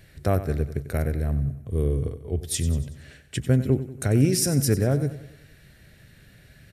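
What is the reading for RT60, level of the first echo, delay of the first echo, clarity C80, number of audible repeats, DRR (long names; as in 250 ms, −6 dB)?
no reverb audible, −13.5 dB, 94 ms, no reverb audible, 4, no reverb audible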